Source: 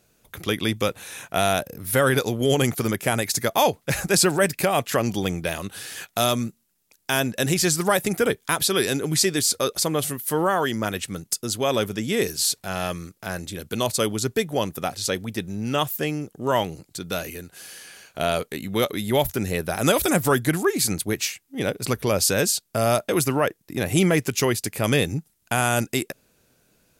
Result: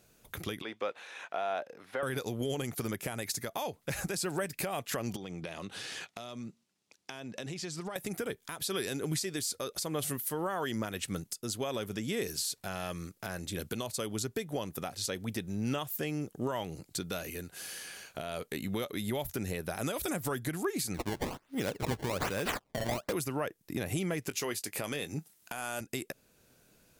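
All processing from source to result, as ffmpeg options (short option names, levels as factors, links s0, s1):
-filter_complex "[0:a]asettb=1/sr,asplit=3[s0][s1][s2];[s0]atrim=end=0.624[s3];[s1]atrim=start=0.62:end=2.03,asetpts=PTS-STARTPTS,afade=t=in:d=0.004:c=qsin,afade=t=out:st=1.406:d=0.004:c=qsin,deesser=0.85,highpass=580,lowpass=3700[s4];[s2]atrim=start=2.026[s5];[s3][s4]acrossfade=d=0.004:c1=hsin:c2=qsin[s6];[s6][s5]acrossfade=d=0.004:c1=qsin:c2=hsin,asettb=1/sr,asplit=3[s7][s8][s9];[s7]atrim=end=5.164[s10];[s8]atrim=start=5.16:end=7.96,asetpts=PTS-STARTPTS,afade=t=in:d=0.004:c=qsin,afade=t=out:st=2.796:d=0.004:c=qsin,highpass=120,lowpass=5600,acompressor=threshold=0.02:ratio=10:attack=3.2:release=140:knee=1:detection=peak,equalizer=f=1600:t=o:w=0.43:g=-3.5[s11];[s9]atrim=start=7.956[s12];[s10][s11]acrossfade=d=0.004:c1=hsin:c2=qsin[s13];[s13][s12]acrossfade=d=0.004:c1=qsin:c2=hsin,asettb=1/sr,asplit=3[s14][s15][s16];[s14]atrim=end=20.944[s17];[s15]atrim=start=20.94:end=23.13,asetpts=PTS-STARTPTS,afade=t=in:d=0.004:c=qsin,afade=t=out:st=2.186:d=0.004:c=qsin,highshelf=f=8100:g=5,acrusher=samples=20:mix=1:aa=0.000001:lfo=1:lforange=32:lforate=1.2[s18];[s16]atrim=start=23.126[s19];[s17][s18]acrossfade=d=0.004:c1=hsin:c2=qsin[s20];[s20][s19]acrossfade=d=0.004:c1=qsin:c2=hsin,asettb=1/sr,asplit=3[s21][s22][s23];[s21]atrim=end=24.294[s24];[s22]atrim=start=24.29:end=25.81,asetpts=PTS-STARTPTS,afade=t=in:d=0.004:c=qsin,afade=t=out:st=1.516:d=0.004:c=qsin,highpass=f=340:p=1,acontrast=40,asplit=2[s25][s26];[s26]adelay=20,volume=0.211[s27];[s25][s27]amix=inputs=2:normalize=0,atrim=end_sample=67032[s28];[s23]atrim=start=25.806[s29];[s24][s28]acrossfade=d=0.004:c1=hsin:c2=qsin[s30];[s30][s29]acrossfade=d=0.004:c1=qsin:c2=hsin,acompressor=threshold=0.0631:ratio=6,alimiter=limit=0.0841:level=0:latency=1:release=444,volume=0.841"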